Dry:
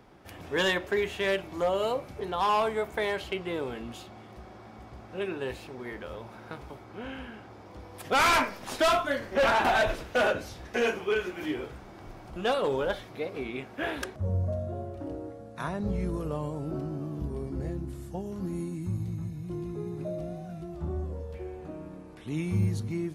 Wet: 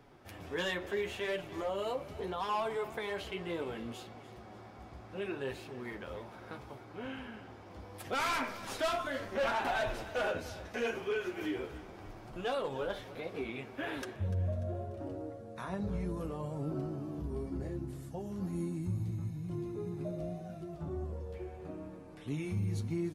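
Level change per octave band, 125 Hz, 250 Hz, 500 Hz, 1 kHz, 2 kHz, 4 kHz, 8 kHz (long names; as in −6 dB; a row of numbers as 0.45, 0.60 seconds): −4.5, −5.0, −7.0, −8.5, −8.5, −8.0, −8.0 decibels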